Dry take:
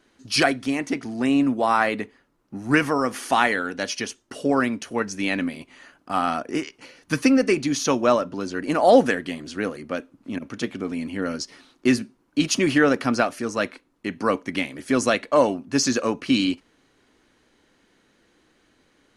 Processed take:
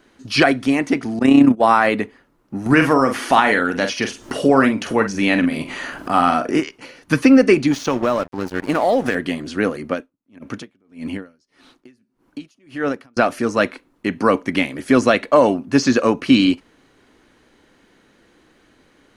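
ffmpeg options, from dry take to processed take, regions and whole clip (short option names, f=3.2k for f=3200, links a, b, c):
-filter_complex "[0:a]asettb=1/sr,asplit=3[a][b][c];[a]atrim=end=1.194[d];[b]atrim=start=1.19:end=1.62,asetpts=PTS-STARTPTS,afade=t=in:d=0.004:c=qsin,afade=t=out:st=0.426:d=0.004:c=qsin,agate=range=-33dB:threshold=-18dB:ratio=3:release=100:detection=peak,acontrast=83,tremolo=f=31:d=0.621[e];[c]atrim=start=1.616[f];[d][e]acrossfade=d=0.004:c1=hsin:c2=qsin[g];[g][f]acrossfade=d=0.004:c1=qsin:c2=hsin,asettb=1/sr,asplit=3[h][i][j];[h]atrim=end=2.664[k];[i]atrim=start=2.66:end=6.6,asetpts=PTS-STARTPTS,afade=t=in:d=0.004:c=qsin,afade=t=out:st=3.936:d=0.004:c=qsin,acompressor=mode=upward:threshold=-23dB:ratio=2.5:attack=3.2:release=140:knee=2.83:detection=peak,asplit=2[l][m];[m]adelay=45,volume=-8.5dB[n];[l][n]amix=inputs=2:normalize=0,atrim=end_sample=173754[o];[j]atrim=start=6.596[p];[k][o]acrossfade=d=0.004:c1=hsin:c2=qsin[q];[q][p]acrossfade=d=0.004:c1=qsin:c2=hsin,asettb=1/sr,asplit=3[r][s][t];[r]atrim=end=7.714[u];[s]atrim=start=7.71:end=9.15,asetpts=PTS-STARTPTS,afade=t=in:d=0.004:c=qsin,afade=t=out:st=1.436:d=0.004:c=qsin,aeval=exprs='sgn(val(0))*max(abs(val(0))-0.0224,0)':c=same,acompressor=threshold=-20dB:ratio=6:attack=3.2:release=140:knee=1:detection=peak[v];[t]atrim=start=9.146[w];[u][v]acrossfade=d=0.004:c1=hsin:c2=qsin[x];[x][w]acrossfade=d=0.004:c1=qsin:c2=hsin,asettb=1/sr,asplit=3[y][z][aa];[y]atrim=end=9.934[ab];[z]atrim=start=9.93:end=13.17,asetpts=PTS-STARTPTS,afade=t=in:d=0.004:c=qsin,afade=t=out:st=3.236:d=0.004:c=qsin,acompressor=threshold=-25dB:ratio=3:attack=3.2:release=140:knee=1:detection=peak,aeval=exprs='val(0)*pow(10,-38*(0.5-0.5*cos(2*PI*1.7*n/s))/20)':c=same[ac];[aa]atrim=start=13.166[ad];[ab][ac]acrossfade=d=0.004:c1=hsin:c2=qsin[ae];[ae][ad]acrossfade=d=0.004:c1=qsin:c2=hsin,acrossover=split=5000[af][ag];[ag]acompressor=threshold=-40dB:ratio=4:attack=1:release=60[ah];[af][ah]amix=inputs=2:normalize=0,equalizer=f=6.2k:w=0.54:g=-4,alimiter=level_in=8.5dB:limit=-1dB:release=50:level=0:latency=1,volume=-1dB"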